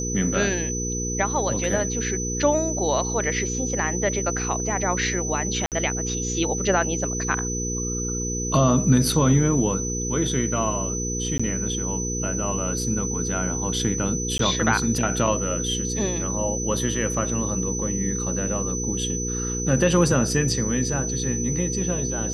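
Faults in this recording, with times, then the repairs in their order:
hum 60 Hz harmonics 8 -29 dBFS
whine 6 kHz -28 dBFS
5.66–5.72 s: dropout 58 ms
11.38–11.39 s: dropout 15 ms
14.38–14.39 s: dropout 13 ms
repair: de-hum 60 Hz, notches 8; band-stop 6 kHz, Q 30; interpolate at 5.66 s, 58 ms; interpolate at 11.38 s, 15 ms; interpolate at 14.38 s, 13 ms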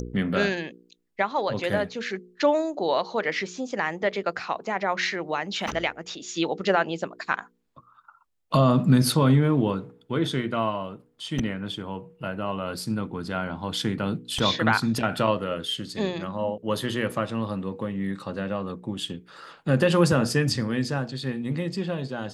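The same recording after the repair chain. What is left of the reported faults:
nothing left

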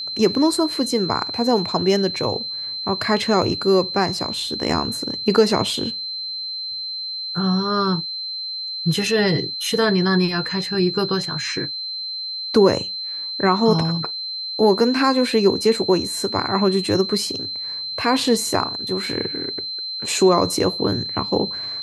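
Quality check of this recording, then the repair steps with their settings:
whine 4.1 kHz -26 dBFS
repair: band-stop 4.1 kHz, Q 30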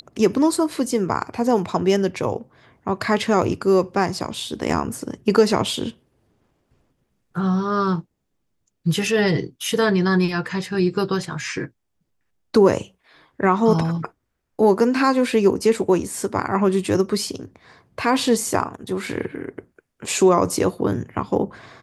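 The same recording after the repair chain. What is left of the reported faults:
nothing left

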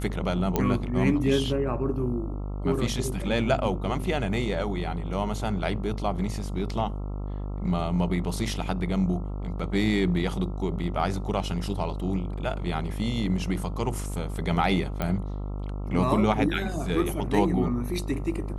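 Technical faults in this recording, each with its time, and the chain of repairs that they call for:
buzz 50 Hz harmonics 27 -32 dBFS
0.56 s: pop -10 dBFS
15.02 s: pop -15 dBFS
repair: de-click; de-hum 50 Hz, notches 27

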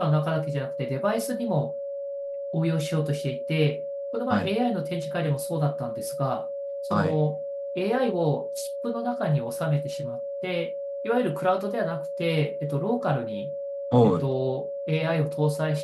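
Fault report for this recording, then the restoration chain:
whine 560 Hz -30 dBFS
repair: band-stop 560 Hz, Q 30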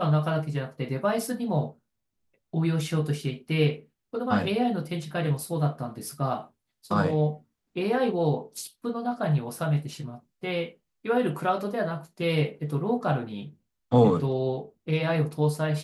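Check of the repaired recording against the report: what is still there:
nothing left

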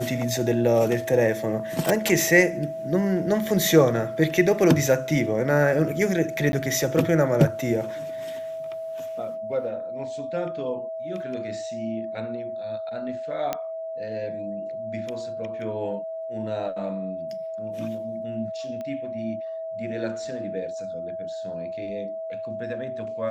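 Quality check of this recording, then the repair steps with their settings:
whine 650 Hz -30 dBFS
1.89 s: pop
6.52–6.53 s: dropout 10 ms
13.53 s: pop -12 dBFS
18.81 s: pop -23 dBFS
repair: de-click; band-stop 650 Hz, Q 30; interpolate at 6.52 s, 10 ms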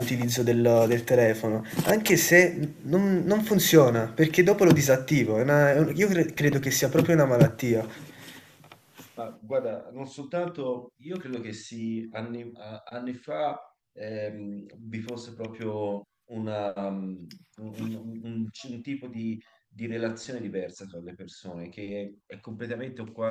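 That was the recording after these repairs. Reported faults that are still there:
nothing left

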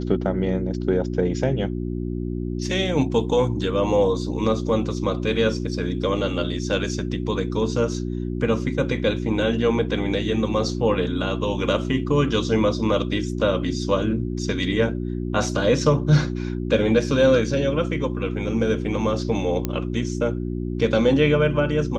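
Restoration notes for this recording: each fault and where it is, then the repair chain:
hum 60 Hz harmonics 6 -27 dBFS
19.65 s: pop -10 dBFS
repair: de-click; de-hum 60 Hz, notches 6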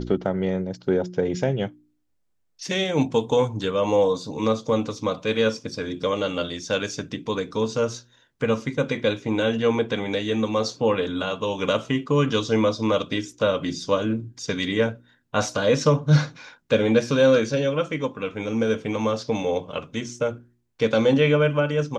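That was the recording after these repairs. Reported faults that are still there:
nothing left

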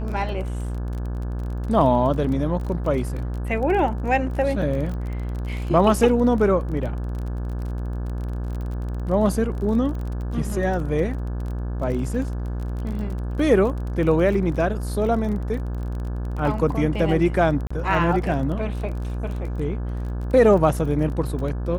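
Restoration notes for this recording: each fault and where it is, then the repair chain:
buzz 60 Hz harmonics 29 -27 dBFS
crackle 27 per s -30 dBFS
17.67–17.70 s: dropout 35 ms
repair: de-click; de-hum 60 Hz, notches 29; interpolate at 17.67 s, 35 ms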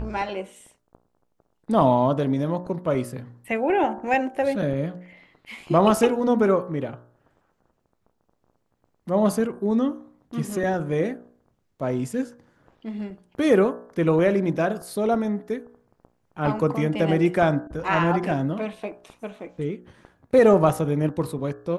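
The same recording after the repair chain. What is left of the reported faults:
nothing left

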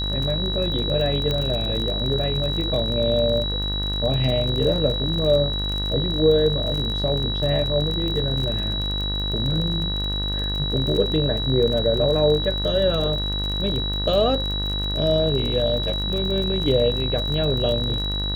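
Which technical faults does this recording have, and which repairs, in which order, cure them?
buzz 50 Hz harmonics 39 -27 dBFS
crackle 30 per s -26 dBFS
whine 3.9 kHz -26 dBFS
1.31 s: pop -12 dBFS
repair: de-click; de-hum 50 Hz, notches 39; band-stop 3.9 kHz, Q 30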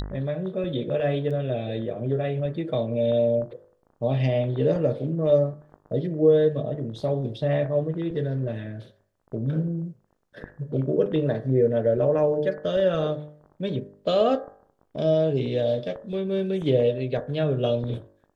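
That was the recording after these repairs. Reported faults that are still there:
1.31 s: pop

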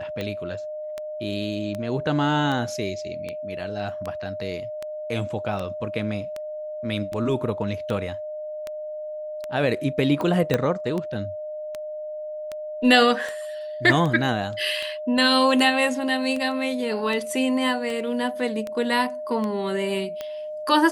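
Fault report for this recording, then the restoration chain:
tick 78 rpm -17 dBFS
whine 610 Hz -30 dBFS
10.54 s: pop -8 dBFS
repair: de-click; band-stop 610 Hz, Q 30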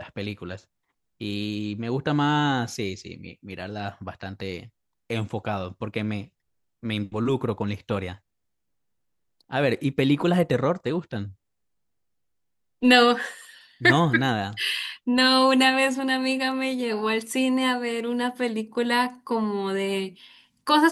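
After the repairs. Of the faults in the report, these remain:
10.54 s: pop

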